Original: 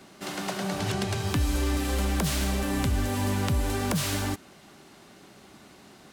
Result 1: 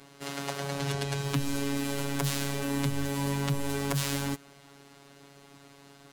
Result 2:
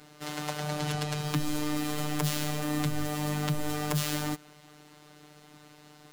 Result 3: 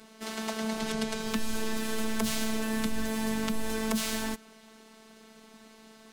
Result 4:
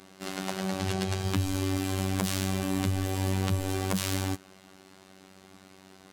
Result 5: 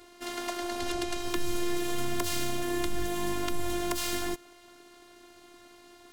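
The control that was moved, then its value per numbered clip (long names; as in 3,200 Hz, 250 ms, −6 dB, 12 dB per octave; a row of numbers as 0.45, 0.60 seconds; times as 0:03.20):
phases set to zero, frequency: 140, 150, 220, 95, 350 Hertz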